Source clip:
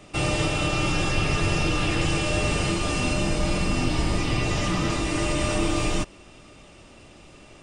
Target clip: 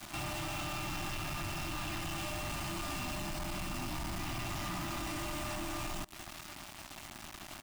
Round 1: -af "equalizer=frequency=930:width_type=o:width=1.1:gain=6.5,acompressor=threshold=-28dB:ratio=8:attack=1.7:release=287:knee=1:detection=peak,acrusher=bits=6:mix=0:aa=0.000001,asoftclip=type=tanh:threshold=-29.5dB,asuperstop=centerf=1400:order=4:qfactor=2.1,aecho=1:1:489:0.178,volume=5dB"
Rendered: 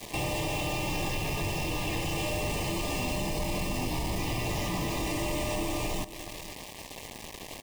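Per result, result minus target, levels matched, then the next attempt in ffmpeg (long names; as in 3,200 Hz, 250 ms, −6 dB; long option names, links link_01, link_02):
echo-to-direct +11 dB; soft clipping: distortion −8 dB; 500 Hz band +4.0 dB
-af "equalizer=frequency=930:width_type=o:width=1.1:gain=6.5,acompressor=threshold=-28dB:ratio=8:attack=1.7:release=287:knee=1:detection=peak,acrusher=bits=6:mix=0:aa=0.000001,asoftclip=type=tanh:threshold=-41dB,asuperstop=centerf=1400:order=4:qfactor=2.1,aecho=1:1:489:0.0501,volume=5dB"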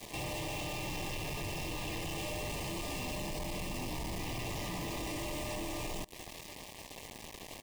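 500 Hz band +3.5 dB
-af "equalizer=frequency=930:width_type=o:width=1.1:gain=6.5,acompressor=threshold=-28dB:ratio=8:attack=1.7:release=287:knee=1:detection=peak,acrusher=bits=6:mix=0:aa=0.000001,asoftclip=type=tanh:threshold=-41dB,asuperstop=centerf=470:order=4:qfactor=2.1,aecho=1:1:489:0.0501,volume=5dB"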